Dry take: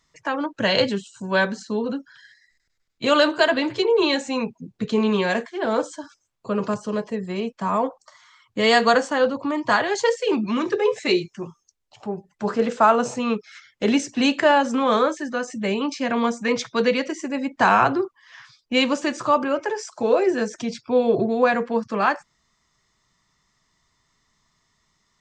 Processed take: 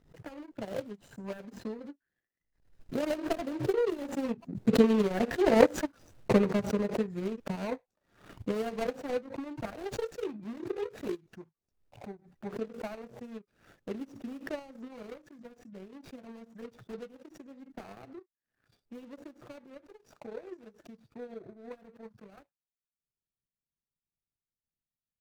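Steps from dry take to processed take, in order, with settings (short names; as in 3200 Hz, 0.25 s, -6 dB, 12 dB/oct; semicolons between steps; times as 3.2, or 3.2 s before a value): median filter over 41 samples; Doppler pass-by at 5.76, 10 m/s, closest 5.6 m; transient shaper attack +9 dB, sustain -11 dB; backwards sustainer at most 110 dB/s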